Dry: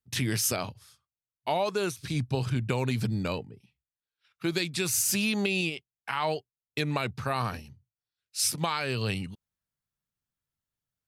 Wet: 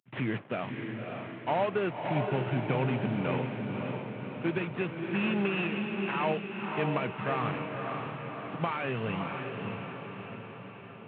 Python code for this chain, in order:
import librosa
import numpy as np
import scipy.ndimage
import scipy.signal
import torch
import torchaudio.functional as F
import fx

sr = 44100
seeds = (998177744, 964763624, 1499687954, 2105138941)

p1 = fx.cvsd(x, sr, bps=16000)
p2 = scipy.signal.sosfilt(scipy.signal.butter(4, 130.0, 'highpass', fs=sr, output='sos'), p1)
y = p2 + fx.echo_diffused(p2, sr, ms=568, feedback_pct=59, wet_db=-4.0, dry=0)